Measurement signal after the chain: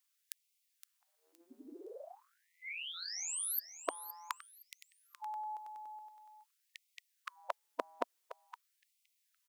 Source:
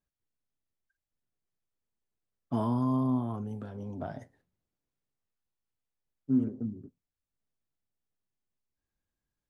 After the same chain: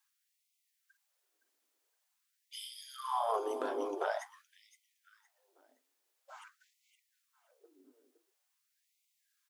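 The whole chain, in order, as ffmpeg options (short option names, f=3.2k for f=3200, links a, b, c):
-af "afftfilt=real='re*lt(hypot(re,im),0.0794)':imag='im*lt(hypot(re,im),0.0794)':win_size=1024:overlap=0.75,highshelf=f=3.1k:g=4.5,asoftclip=type=tanh:threshold=-22.5dB,aecho=1:1:516|1032|1548:0.251|0.0678|0.0183,afftfilt=real='re*gte(b*sr/1024,230*pow(2000/230,0.5+0.5*sin(2*PI*0.47*pts/sr)))':imag='im*gte(b*sr/1024,230*pow(2000/230,0.5+0.5*sin(2*PI*0.47*pts/sr)))':win_size=1024:overlap=0.75,volume=10.5dB"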